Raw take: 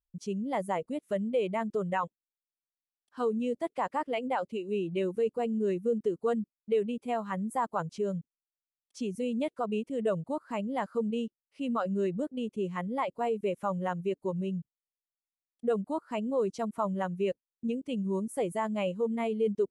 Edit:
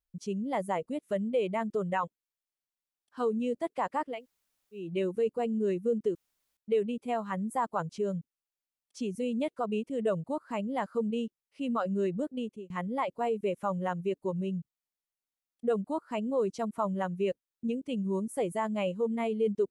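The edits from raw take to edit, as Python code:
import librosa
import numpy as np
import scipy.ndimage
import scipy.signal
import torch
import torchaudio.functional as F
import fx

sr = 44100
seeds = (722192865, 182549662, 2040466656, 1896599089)

y = fx.edit(x, sr, fx.room_tone_fill(start_s=4.14, length_s=0.69, crossfade_s=0.24),
    fx.room_tone_fill(start_s=6.15, length_s=0.42),
    fx.fade_out_span(start_s=12.39, length_s=0.31), tone=tone)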